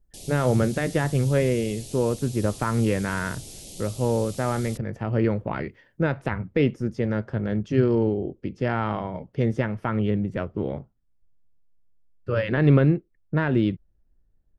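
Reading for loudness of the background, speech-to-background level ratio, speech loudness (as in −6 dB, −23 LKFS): −40.0 LKFS, 15.0 dB, −25.0 LKFS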